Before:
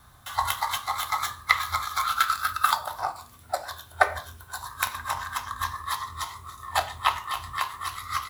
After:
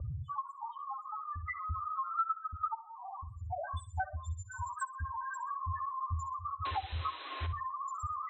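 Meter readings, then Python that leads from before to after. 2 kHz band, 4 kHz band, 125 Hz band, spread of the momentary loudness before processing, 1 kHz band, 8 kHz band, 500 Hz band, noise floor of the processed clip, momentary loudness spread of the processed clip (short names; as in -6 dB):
-16.5 dB, -19.5 dB, +3.5 dB, 11 LU, -9.0 dB, -19.0 dB, -13.5 dB, -50 dBFS, 7 LU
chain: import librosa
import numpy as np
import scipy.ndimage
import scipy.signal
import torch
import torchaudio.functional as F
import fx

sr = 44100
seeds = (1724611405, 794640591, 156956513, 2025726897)

y = fx.freq_compress(x, sr, knee_hz=3400.0, ratio=1.5)
y = scipy.signal.sosfilt(scipy.signal.butter(2, 54.0, 'highpass', fs=sr, output='sos'), y)
y = fx.peak_eq(y, sr, hz=8500.0, db=11.5, octaves=1.8)
y = fx.level_steps(y, sr, step_db=21)
y = fx.spec_topn(y, sr, count=2)
y = fx.riaa(y, sr, side='playback')
y = fx.spec_paint(y, sr, seeds[0], shape='noise', start_s=6.65, length_s=0.82, low_hz=270.0, high_hz=4100.0, level_db=-51.0)
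y = fx.room_flutter(y, sr, wall_m=10.6, rt60_s=0.25)
y = fx.filter_sweep_lowpass(y, sr, from_hz=560.0, to_hz=8600.0, start_s=1.45, end_s=4.26, q=4.8)
y = fx.band_squash(y, sr, depth_pct=100)
y = F.gain(torch.from_numpy(y), 3.5).numpy()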